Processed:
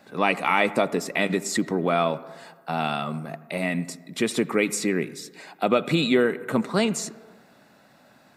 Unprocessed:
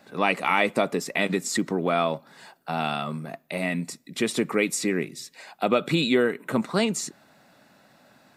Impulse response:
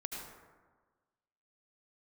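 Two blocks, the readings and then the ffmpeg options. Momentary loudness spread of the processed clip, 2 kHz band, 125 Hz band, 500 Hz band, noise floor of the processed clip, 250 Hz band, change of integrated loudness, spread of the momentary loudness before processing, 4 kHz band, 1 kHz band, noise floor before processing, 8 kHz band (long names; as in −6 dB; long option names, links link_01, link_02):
13 LU, +0.5 dB, +1.5 dB, +1.5 dB, −56 dBFS, +1.5 dB, +1.0 dB, 13 LU, 0.0 dB, +1.0 dB, −59 dBFS, 0.0 dB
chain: -filter_complex "[0:a]asplit=2[link_01][link_02];[1:a]atrim=start_sample=2205,lowpass=2900[link_03];[link_02][link_03]afir=irnorm=-1:irlink=0,volume=-13.5dB[link_04];[link_01][link_04]amix=inputs=2:normalize=0"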